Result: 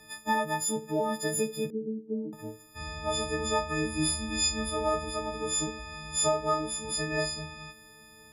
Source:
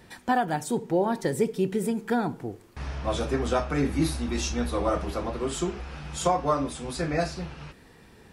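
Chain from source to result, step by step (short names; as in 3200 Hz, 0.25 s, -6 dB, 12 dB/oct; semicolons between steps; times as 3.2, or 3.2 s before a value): frequency quantiser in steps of 6 st; 1.7–2.33 elliptic band-pass 180–450 Hz, stop band 60 dB; gain -6 dB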